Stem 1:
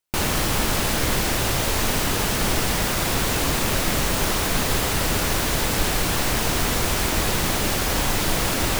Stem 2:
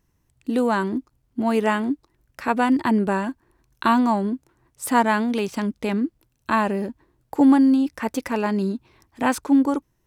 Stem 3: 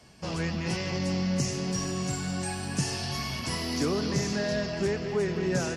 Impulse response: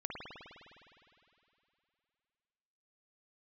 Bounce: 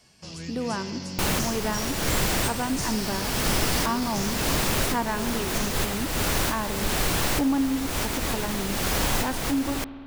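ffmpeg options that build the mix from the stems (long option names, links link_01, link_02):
-filter_complex "[0:a]adelay=1050,volume=-2.5dB,asplit=2[link_01][link_02];[link_02]volume=-22dB[link_03];[1:a]volume=-11dB,asplit=3[link_04][link_05][link_06];[link_05]volume=-9.5dB[link_07];[2:a]highshelf=frequency=2200:gain=9,acrossover=split=390|3000[link_08][link_09][link_10];[link_09]acompressor=threshold=-46dB:ratio=2.5[link_11];[link_08][link_11][link_10]amix=inputs=3:normalize=0,volume=-7dB[link_12];[link_06]apad=whole_len=433965[link_13];[link_01][link_13]sidechaincompress=threshold=-37dB:ratio=8:attack=25:release=310[link_14];[3:a]atrim=start_sample=2205[link_15];[link_03][link_07]amix=inputs=2:normalize=0[link_16];[link_16][link_15]afir=irnorm=-1:irlink=0[link_17];[link_14][link_04][link_12][link_17]amix=inputs=4:normalize=0"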